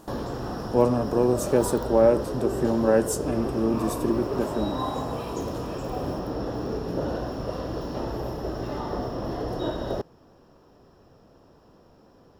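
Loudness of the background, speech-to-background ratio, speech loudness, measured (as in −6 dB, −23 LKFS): −31.0 LKFS, 6.5 dB, −24.5 LKFS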